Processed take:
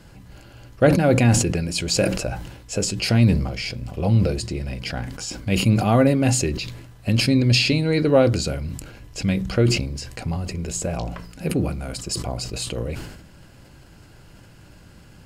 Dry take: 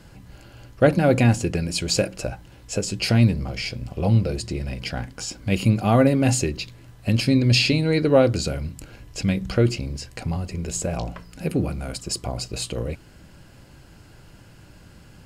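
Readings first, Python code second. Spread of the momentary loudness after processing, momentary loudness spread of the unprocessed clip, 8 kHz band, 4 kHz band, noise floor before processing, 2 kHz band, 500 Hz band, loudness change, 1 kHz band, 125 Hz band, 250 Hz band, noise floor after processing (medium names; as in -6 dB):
14 LU, 14 LU, +2.5 dB, +1.5 dB, -49 dBFS, +1.0 dB, +0.5 dB, +1.0 dB, +0.5 dB, +1.0 dB, +1.0 dB, -48 dBFS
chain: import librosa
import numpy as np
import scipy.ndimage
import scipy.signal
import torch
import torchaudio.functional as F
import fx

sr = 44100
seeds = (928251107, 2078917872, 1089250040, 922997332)

y = fx.sustainer(x, sr, db_per_s=59.0)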